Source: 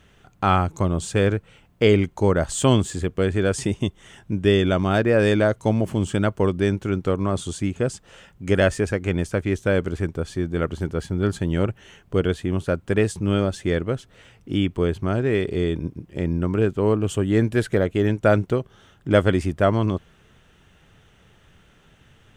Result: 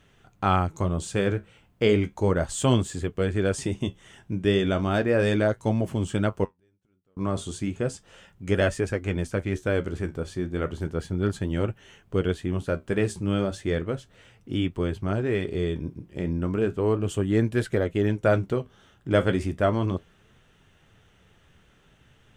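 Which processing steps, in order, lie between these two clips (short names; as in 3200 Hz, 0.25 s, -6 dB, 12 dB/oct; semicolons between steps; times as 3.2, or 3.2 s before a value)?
6.44–7.17 flipped gate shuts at -22 dBFS, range -42 dB; flange 0.34 Hz, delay 7 ms, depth 9.9 ms, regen -57%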